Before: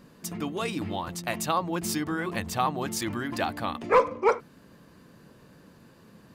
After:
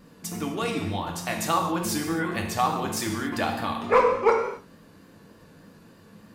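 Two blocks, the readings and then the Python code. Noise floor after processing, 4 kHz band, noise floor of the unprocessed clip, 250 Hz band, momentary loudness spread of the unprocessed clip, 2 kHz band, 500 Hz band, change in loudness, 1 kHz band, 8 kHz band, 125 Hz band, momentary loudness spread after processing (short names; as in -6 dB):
-53 dBFS, +2.5 dB, -55 dBFS, +2.5 dB, 10 LU, +2.5 dB, +2.5 dB, +2.5 dB, +2.5 dB, +2.5 dB, +2.5 dB, 10 LU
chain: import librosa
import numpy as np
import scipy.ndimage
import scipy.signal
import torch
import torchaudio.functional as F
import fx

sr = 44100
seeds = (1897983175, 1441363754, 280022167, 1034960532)

y = fx.rev_gated(x, sr, seeds[0], gate_ms=300, shape='falling', drr_db=1.0)
y = fx.vibrato(y, sr, rate_hz=3.4, depth_cents=39.0)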